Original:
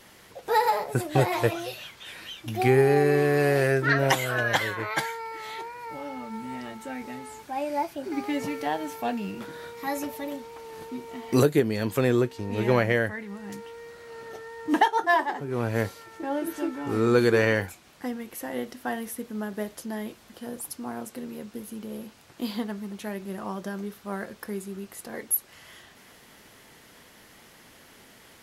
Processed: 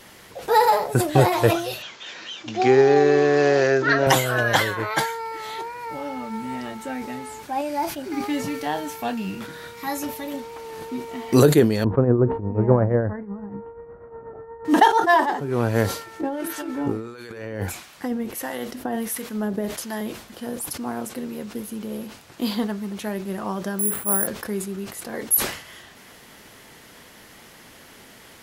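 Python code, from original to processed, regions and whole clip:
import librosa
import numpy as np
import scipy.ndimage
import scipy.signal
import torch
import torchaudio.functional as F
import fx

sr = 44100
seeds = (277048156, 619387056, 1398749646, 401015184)

y = fx.chain(x, sr, fx.highpass(hz=230.0, slope=12),
    fx.resample_bad(factor=3, down='none', up='filtered'), at=(1.82, 4.07))
y = fx.chain(y, sr, fx.peak_eq(hz=520.0, db=-5.5, octaves=1.8),
    fx.doubler(ms=27.0, db=-11.5), at=(7.61, 10.34))
y = fx.chain(y, sr, fx.lowpass(hz=1200.0, slope=24),
    fx.low_shelf(hz=110.0, db=11.0),
    fx.tremolo_shape(shape='triangle', hz=8.3, depth_pct=75), at=(11.84, 14.65))
y = fx.chain(y, sr, fx.over_compress(threshold_db=-31.0, ratio=-1.0),
    fx.harmonic_tremolo(hz=1.5, depth_pct=70, crossover_hz=770.0), at=(16.21, 20.01))
y = fx.chain(y, sr, fx.lowpass(hz=2500.0, slope=12),
    fx.resample_bad(factor=4, down='filtered', up='zero_stuff'), at=(23.79, 24.27))
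y = fx.dynamic_eq(y, sr, hz=2200.0, q=2.2, threshold_db=-46.0, ratio=4.0, max_db=-5)
y = fx.sustainer(y, sr, db_per_s=98.0)
y = F.gain(torch.from_numpy(y), 5.5).numpy()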